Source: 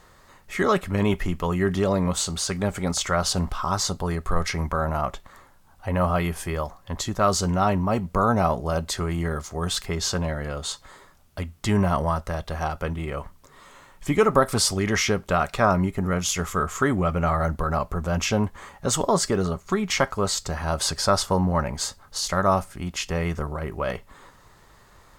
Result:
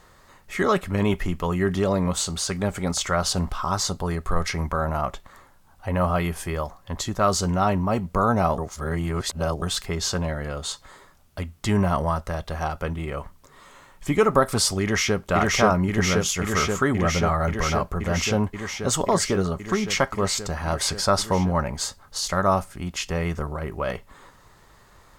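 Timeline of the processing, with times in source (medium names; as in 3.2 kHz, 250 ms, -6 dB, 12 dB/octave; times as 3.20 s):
8.58–9.62 s: reverse
14.82–15.24 s: echo throw 530 ms, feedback 85%, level -0.5 dB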